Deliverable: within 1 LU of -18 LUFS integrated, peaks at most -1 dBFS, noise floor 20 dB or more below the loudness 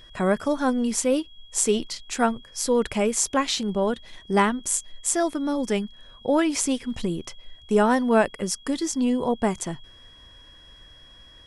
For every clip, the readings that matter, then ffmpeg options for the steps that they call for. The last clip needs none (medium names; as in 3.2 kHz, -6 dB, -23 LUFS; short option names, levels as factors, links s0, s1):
steady tone 3.3 kHz; tone level -49 dBFS; loudness -24.5 LUFS; peak level -6.5 dBFS; loudness target -18.0 LUFS
-> -af "bandreject=f=3300:w=30"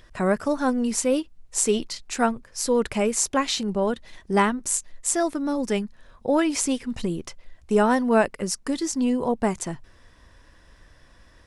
steady tone not found; loudness -24.5 LUFS; peak level -6.0 dBFS; loudness target -18.0 LUFS
-> -af "volume=2.11,alimiter=limit=0.891:level=0:latency=1"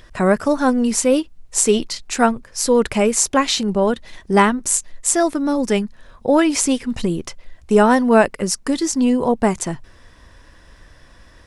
loudness -18.0 LUFS; peak level -1.0 dBFS; noise floor -47 dBFS